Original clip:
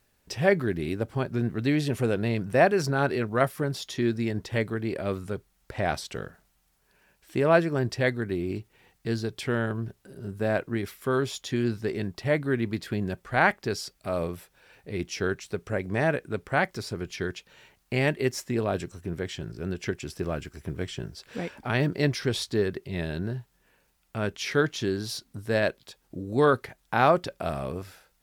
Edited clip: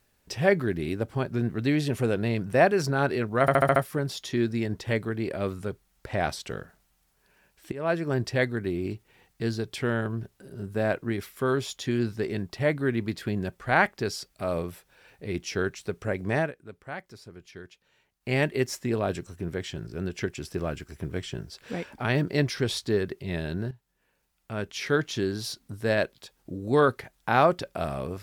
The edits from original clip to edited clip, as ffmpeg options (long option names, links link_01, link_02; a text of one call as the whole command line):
ffmpeg -i in.wav -filter_complex "[0:a]asplit=10[link_01][link_02][link_03][link_04][link_05][link_06][link_07][link_08][link_09][link_10];[link_01]atrim=end=3.482[link_11];[link_02]atrim=start=3.408:end=3.482[link_12];[link_03]atrim=start=3.408:end=3.482[link_13];[link_04]atrim=start=3.408:end=3.482[link_14];[link_05]atrim=start=3.408:end=3.482[link_15];[link_06]atrim=start=3.408:end=7.37,asetpts=PTS-STARTPTS,afade=type=out:start_time=3.958:duration=0.004:curve=hsin:silence=0.112202[link_16];[link_07]atrim=start=7.37:end=16.17,asetpts=PTS-STARTPTS,afade=type=in:duration=0.42:silence=0.112202,afade=type=out:start_time=8.66:duration=0.14:silence=0.223872[link_17];[link_08]atrim=start=16.17:end=17.85,asetpts=PTS-STARTPTS,volume=-13dB[link_18];[link_09]atrim=start=17.85:end=23.36,asetpts=PTS-STARTPTS,afade=type=in:duration=0.14:silence=0.223872,afade=type=out:start_time=5.506:duration=0.004:curve=hsin:silence=0.237137[link_19];[link_10]atrim=start=23.36,asetpts=PTS-STARTPTS,afade=type=in:duration=1.43:silence=0.237137[link_20];[link_11][link_12]acrossfade=duration=0.004:curve1=hsin:curve2=hsin[link_21];[link_21][link_13]acrossfade=duration=0.004:curve1=hsin:curve2=hsin[link_22];[link_22][link_14]acrossfade=duration=0.004:curve1=hsin:curve2=hsin[link_23];[link_23][link_15]acrossfade=duration=0.004:curve1=hsin:curve2=hsin[link_24];[link_16][link_17][link_18][link_19][link_20]concat=n=5:v=0:a=1[link_25];[link_24][link_25]acrossfade=duration=0.004:curve1=hsin:curve2=hsin" out.wav